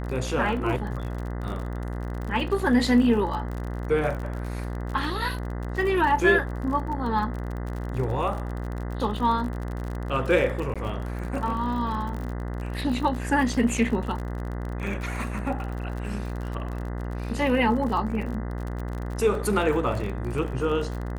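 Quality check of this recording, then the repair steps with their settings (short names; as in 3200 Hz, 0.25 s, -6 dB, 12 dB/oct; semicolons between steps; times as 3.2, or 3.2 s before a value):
buzz 60 Hz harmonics 34 -31 dBFS
crackle 44/s -32 dBFS
10.74–10.76 gap 16 ms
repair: de-click; de-hum 60 Hz, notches 34; interpolate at 10.74, 16 ms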